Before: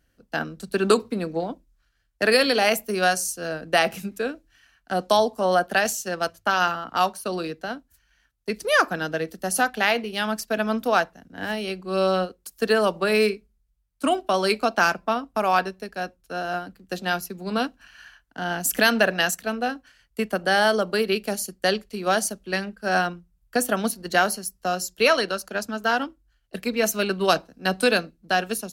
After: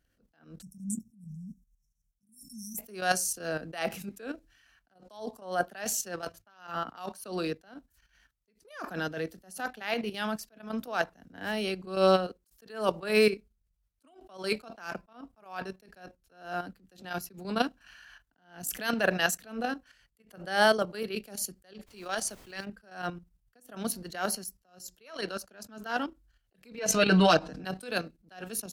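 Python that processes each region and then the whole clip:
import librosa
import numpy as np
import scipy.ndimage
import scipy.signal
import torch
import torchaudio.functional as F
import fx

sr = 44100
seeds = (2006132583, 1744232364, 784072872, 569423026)

y = fx.chain(x, sr, fx.brickwall_bandstop(low_hz=260.0, high_hz=5300.0),
    fx.fixed_phaser(hz=400.0, stages=8), at=(0.62, 2.78))
y = fx.lowpass(y, sr, hz=10000.0, slope=12, at=(21.86, 22.64), fade=0.02)
y = fx.low_shelf(y, sr, hz=440.0, db=-10.0, at=(21.86, 22.64), fade=0.02)
y = fx.dmg_noise_colour(y, sr, seeds[0], colour='pink', level_db=-53.0, at=(21.86, 22.64), fade=0.02)
y = fx.chain(y, sr, fx.lowpass(hz=6300.0, slope=12),
    fx.comb(ms=6.5, depth=0.96),
    fx.pre_swell(db_per_s=34.0), at=(26.78, 27.65))
y = fx.level_steps(y, sr, step_db=11)
y = fx.attack_slew(y, sr, db_per_s=130.0)
y = F.gain(torch.from_numpy(y), 2.0).numpy()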